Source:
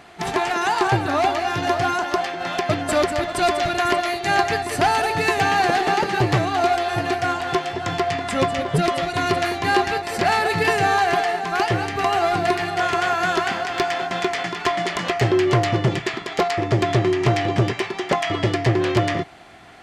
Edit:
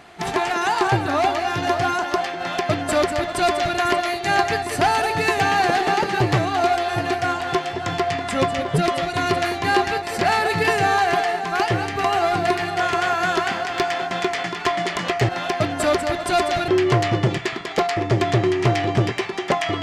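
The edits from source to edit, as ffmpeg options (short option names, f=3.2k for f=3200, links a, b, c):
-filter_complex "[0:a]asplit=3[a][b][c];[a]atrim=end=15.292[d];[b]atrim=start=2.378:end=3.772[e];[c]atrim=start=15.288[f];[d][e]acrossfade=d=0.004:c1=hsin:c2=hsin[g];[g][f]acrossfade=d=0.004:c1=hsin:c2=hsin"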